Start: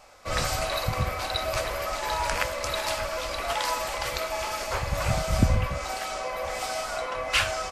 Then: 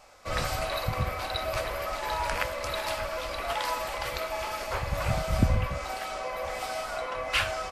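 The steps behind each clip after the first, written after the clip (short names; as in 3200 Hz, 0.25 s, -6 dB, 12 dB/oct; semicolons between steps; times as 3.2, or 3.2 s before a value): dynamic EQ 6800 Hz, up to -6 dB, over -47 dBFS, Q 1.1; gain -2 dB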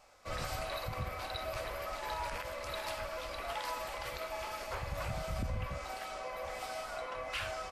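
limiter -20.5 dBFS, peak gain reduction 10 dB; gain -7.5 dB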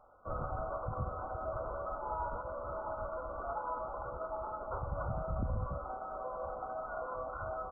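brick-wall FIR low-pass 1500 Hz; gain +1.5 dB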